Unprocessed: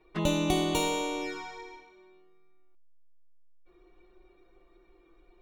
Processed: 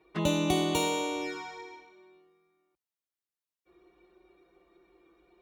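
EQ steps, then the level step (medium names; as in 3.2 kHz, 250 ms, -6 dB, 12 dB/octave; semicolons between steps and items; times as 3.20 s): high-pass 59 Hz 24 dB/octave; 0.0 dB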